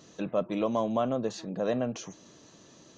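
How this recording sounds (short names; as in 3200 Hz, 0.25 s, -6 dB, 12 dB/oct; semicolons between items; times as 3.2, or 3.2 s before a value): noise floor -56 dBFS; spectral tilt -6.0 dB/oct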